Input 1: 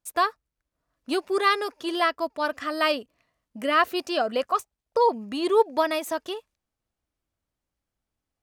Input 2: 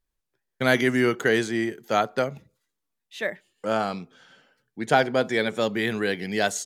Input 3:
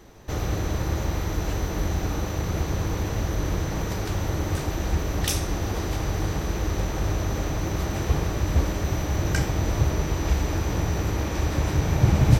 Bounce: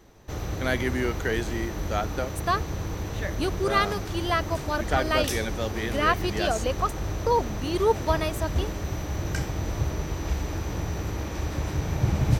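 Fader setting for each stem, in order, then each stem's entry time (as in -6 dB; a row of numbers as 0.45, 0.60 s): -2.5, -6.5, -5.0 dB; 2.30, 0.00, 0.00 s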